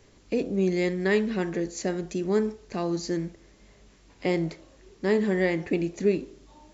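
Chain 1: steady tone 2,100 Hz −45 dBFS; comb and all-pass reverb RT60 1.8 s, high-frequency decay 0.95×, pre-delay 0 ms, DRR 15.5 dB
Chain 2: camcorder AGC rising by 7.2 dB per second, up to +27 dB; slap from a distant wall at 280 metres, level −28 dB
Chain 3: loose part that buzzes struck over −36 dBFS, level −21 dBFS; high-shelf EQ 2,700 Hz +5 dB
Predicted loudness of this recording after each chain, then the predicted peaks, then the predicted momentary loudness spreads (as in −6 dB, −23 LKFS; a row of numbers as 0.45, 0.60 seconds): −27.5, −27.0, −26.0 LKFS; −12.0, −11.5, −10.0 dBFS; 20, 7, 7 LU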